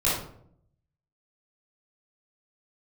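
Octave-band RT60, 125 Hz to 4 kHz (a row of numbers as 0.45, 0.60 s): 1.1, 0.90, 0.75, 0.55, 0.45, 0.35 s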